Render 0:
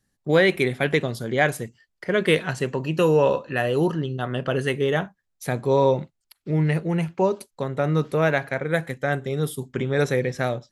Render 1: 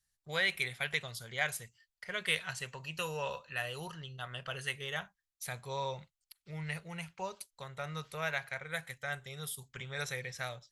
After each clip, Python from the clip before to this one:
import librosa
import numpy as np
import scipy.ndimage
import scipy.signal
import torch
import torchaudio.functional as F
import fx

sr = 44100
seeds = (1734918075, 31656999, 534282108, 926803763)

y = fx.tone_stack(x, sr, knobs='10-0-10')
y = fx.notch(y, sr, hz=1700.0, q=24.0)
y = y * 10.0 ** (-3.5 / 20.0)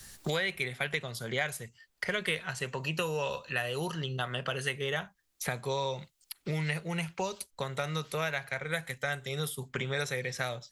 y = fx.peak_eq(x, sr, hz=300.0, db=8.5, octaves=1.5)
y = fx.band_squash(y, sr, depth_pct=100)
y = y * 10.0 ** (2.5 / 20.0)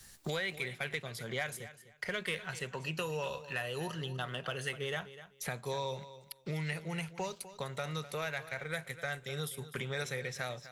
y = fx.leveller(x, sr, passes=1)
y = fx.echo_feedback(y, sr, ms=251, feedback_pct=20, wet_db=-14.5)
y = y * 10.0 ** (-8.0 / 20.0)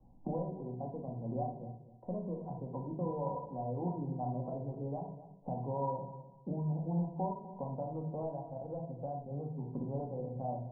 y = scipy.signal.sosfilt(scipy.signal.cheby1(6, 9, 1000.0, 'lowpass', fs=sr, output='sos'), x)
y = fx.room_shoebox(y, sr, seeds[0], volume_m3=560.0, walls='furnished', distance_m=2.2)
y = y * 10.0 ** (5.0 / 20.0)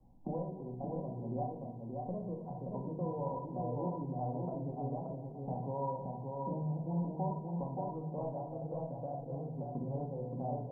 y = fx.echo_feedback(x, sr, ms=575, feedback_pct=23, wet_db=-3.5)
y = y * 10.0 ** (-1.5 / 20.0)